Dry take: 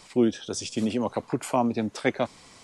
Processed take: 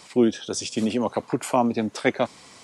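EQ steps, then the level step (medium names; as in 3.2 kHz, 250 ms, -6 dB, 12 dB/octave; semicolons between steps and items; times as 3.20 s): high-pass 130 Hz 6 dB/octave; +3.5 dB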